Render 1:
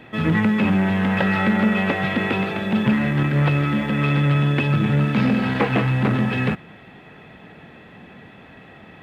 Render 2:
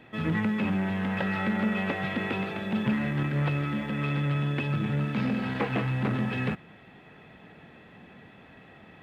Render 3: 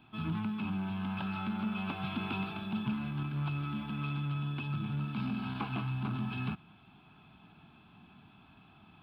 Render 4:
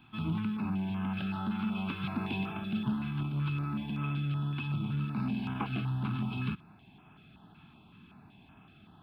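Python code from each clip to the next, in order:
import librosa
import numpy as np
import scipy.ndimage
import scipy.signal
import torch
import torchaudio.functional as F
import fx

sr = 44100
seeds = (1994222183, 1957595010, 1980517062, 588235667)

y1 = fx.rider(x, sr, range_db=10, speed_s=2.0)
y1 = F.gain(torch.from_numpy(y1), -9.0).numpy()
y2 = fx.fixed_phaser(y1, sr, hz=1900.0, stages=6)
y2 = fx.rider(y2, sr, range_db=10, speed_s=0.5)
y2 = F.gain(torch.from_numpy(y2), -5.0).numpy()
y3 = fx.filter_held_notch(y2, sr, hz=5.3, low_hz=530.0, high_hz=4300.0)
y3 = F.gain(torch.from_numpy(y3), 2.5).numpy()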